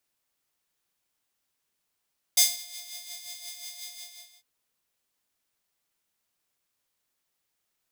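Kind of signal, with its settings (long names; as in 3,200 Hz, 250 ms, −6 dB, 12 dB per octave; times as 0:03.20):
subtractive patch with tremolo F5, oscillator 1 triangle, oscillator 2 square, interval 0 semitones, oscillator 2 level −3 dB, sub −10.5 dB, noise −11.5 dB, filter highpass, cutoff 3,900 Hz, Q 1.3, filter envelope 0.5 octaves, attack 6 ms, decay 0.19 s, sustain −23 dB, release 0.56 s, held 1.50 s, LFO 5.6 Hz, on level 7 dB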